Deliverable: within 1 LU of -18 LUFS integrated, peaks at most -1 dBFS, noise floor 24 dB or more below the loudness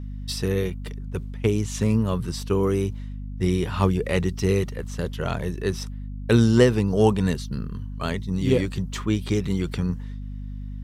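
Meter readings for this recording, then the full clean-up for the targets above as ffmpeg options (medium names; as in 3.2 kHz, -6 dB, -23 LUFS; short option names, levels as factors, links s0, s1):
hum 50 Hz; highest harmonic 250 Hz; hum level -30 dBFS; loudness -24.5 LUFS; peak level -5.0 dBFS; loudness target -18.0 LUFS
-> -af "bandreject=f=50:t=h:w=4,bandreject=f=100:t=h:w=4,bandreject=f=150:t=h:w=4,bandreject=f=200:t=h:w=4,bandreject=f=250:t=h:w=4"
-af "volume=2.11,alimiter=limit=0.891:level=0:latency=1"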